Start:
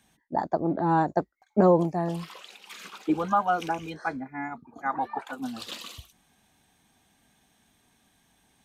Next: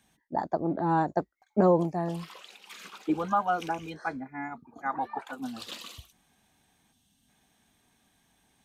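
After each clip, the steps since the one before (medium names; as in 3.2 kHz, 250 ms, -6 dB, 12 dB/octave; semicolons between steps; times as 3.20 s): time-frequency box 6.92–7.28 s, 280–2600 Hz -10 dB; trim -2.5 dB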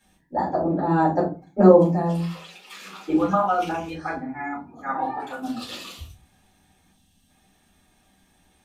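reverberation RT60 0.30 s, pre-delay 4 ms, DRR -6.5 dB; trim -3.5 dB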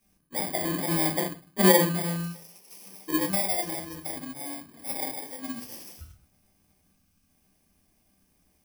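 bit-reversed sample order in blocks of 32 samples; trim -6 dB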